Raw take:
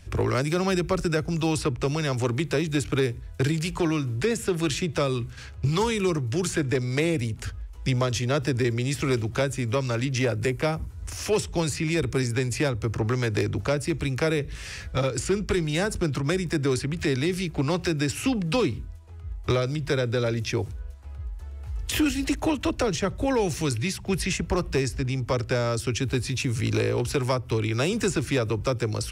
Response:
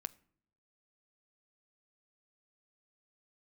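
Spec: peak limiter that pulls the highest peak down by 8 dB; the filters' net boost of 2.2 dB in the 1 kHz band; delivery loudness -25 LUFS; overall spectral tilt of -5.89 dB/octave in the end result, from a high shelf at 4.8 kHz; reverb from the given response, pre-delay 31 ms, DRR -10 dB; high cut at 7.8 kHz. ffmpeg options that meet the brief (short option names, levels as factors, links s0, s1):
-filter_complex "[0:a]lowpass=7800,equalizer=f=1000:t=o:g=3,highshelf=f=4800:g=-3,alimiter=limit=0.0891:level=0:latency=1,asplit=2[s0][s1];[1:a]atrim=start_sample=2205,adelay=31[s2];[s1][s2]afir=irnorm=-1:irlink=0,volume=4.47[s3];[s0][s3]amix=inputs=2:normalize=0,volume=0.501"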